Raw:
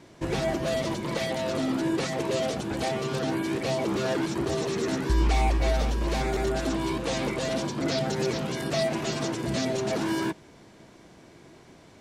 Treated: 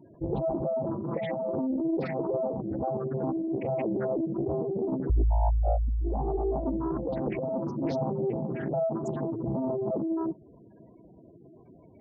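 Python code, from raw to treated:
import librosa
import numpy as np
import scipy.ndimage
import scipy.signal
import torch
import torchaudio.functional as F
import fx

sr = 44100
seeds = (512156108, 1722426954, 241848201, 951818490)

y = fx.spec_gate(x, sr, threshold_db=-10, keep='strong')
y = fx.doppler_dist(y, sr, depth_ms=0.73)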